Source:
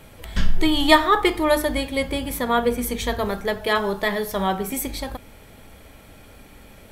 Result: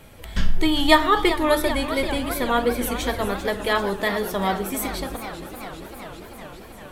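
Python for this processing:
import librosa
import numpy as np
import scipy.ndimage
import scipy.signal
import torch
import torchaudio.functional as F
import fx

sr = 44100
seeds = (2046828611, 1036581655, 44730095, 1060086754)

y = fx.echo_warbled(x, sr, ms=394, feedback_pct=77, rate_hz=2.8, cents=154, wet_db=-12)
y = y * 10.0 ** (-1.0 / 20.0)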